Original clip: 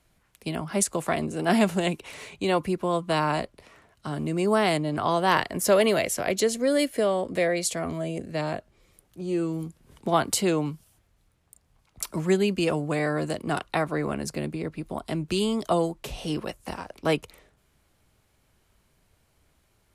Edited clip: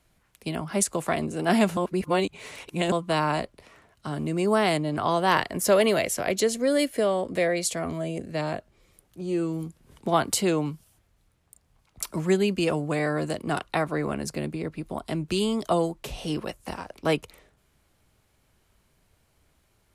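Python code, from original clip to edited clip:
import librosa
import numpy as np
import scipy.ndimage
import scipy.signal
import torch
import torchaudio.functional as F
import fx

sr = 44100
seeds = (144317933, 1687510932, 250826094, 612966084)

y = fx.edit(x, sr, fx.reverse_span(start_s=1.77, length_s=1.15), tone=tone)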